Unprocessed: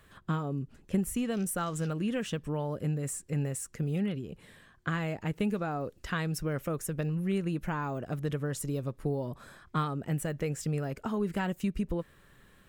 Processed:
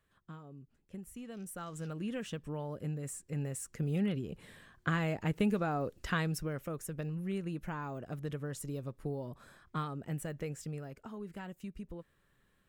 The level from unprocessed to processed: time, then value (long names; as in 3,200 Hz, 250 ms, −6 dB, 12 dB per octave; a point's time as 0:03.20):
0:00.94 −17.5 dB
0:02.04 −6.5 dB
0:03.26 −6.5 dB
0:04.18 0 dB
0:06.18 0 dB
0:06.58 −6.5 dB
0:10.42 −6.5 dB
0:11.08 −13 dB